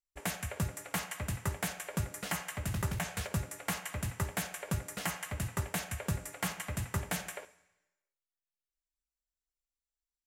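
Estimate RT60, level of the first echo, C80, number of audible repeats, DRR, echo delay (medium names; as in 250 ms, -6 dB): 1.1 s, no echo, 19.0 dB, no echo, 9.0 dB, no echo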